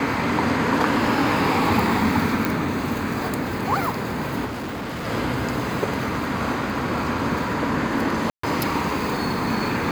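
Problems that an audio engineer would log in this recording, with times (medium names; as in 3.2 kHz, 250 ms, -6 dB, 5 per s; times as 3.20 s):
2.45 s: pop
4.45–5.07 s: clipped -26.5 dBFS
8.30–8.43 s: dropout 134 ms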